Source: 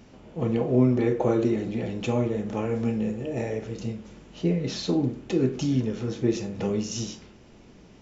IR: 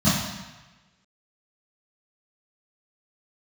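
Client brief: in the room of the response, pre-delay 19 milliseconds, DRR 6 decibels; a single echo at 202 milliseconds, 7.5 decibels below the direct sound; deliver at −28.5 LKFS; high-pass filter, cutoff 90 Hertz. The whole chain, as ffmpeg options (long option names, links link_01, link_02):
-filter_complex "[0:a]highpass=90,aecho=1:1:202:0.422,asplit=2[link_01][link_02];[1:a]atrim=start_sample=2205,adelay=19[link_03];[link_02][link_03]afir=irnorm=-1:irlink=0,volume=-23dB[link_04];[link_01][link_04]amix=inputs=2:normalize=0,volume=-8.5dB"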